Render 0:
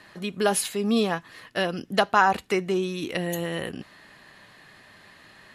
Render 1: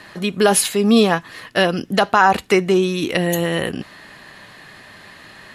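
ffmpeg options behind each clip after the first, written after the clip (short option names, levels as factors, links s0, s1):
-af "alimiter=level_in=3.35:limit=0.891:release=50:level=0:latency=1,volume=0.891"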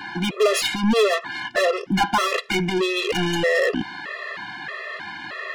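-filter_complex "[0:a]adynamicsmooth=sensitivity=0.5:basefreq=3400,asplit=2[s0][s1];[s1]highpass=f=720:p=1,volume=28.2,asoftclip=type=tanh:threshold=0.794[s2];[s0][s2]amix=inputs=2:normalize=0,lowpass=f=6500:p=1,volume=0.501,afftfilt=real='re*gt(sin(2*PI*1.6*pts/sr)*(1-2*mod(floor(b*sr/1024/350),2)),0)':imag='im*gt(sin(2*PI*1.6*pts/sr)*(1-2*mod(floor(b*sr/1024/350),2)),0)':win_size=1024:overlap=0.75,volume=0.447"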